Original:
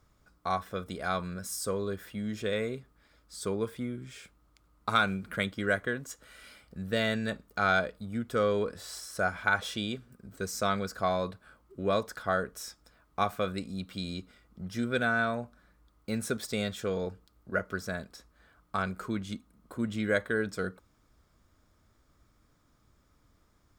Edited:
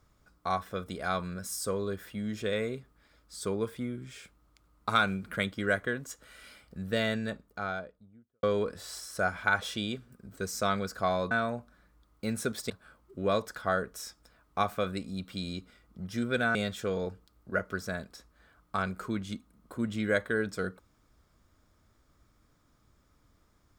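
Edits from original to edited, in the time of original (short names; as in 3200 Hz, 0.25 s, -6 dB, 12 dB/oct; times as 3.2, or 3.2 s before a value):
6.86–8.43 studio fade out
15.16–16.55 move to 11.31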